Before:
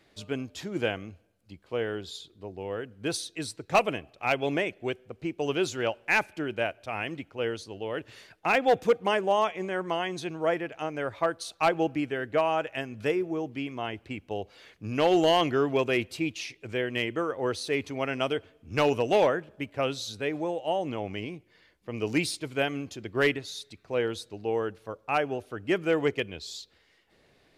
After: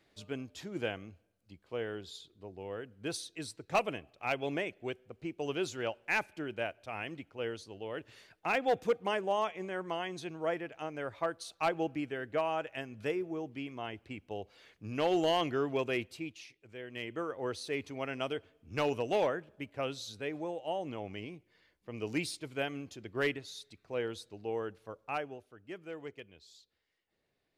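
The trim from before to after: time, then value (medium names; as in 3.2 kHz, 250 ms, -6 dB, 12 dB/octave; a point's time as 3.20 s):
15.96 s -7 dB
16.69 s -18 dB
17.21 s -7.5 dB
25.07 s -7.5 dB
25.54 s -18.5 dB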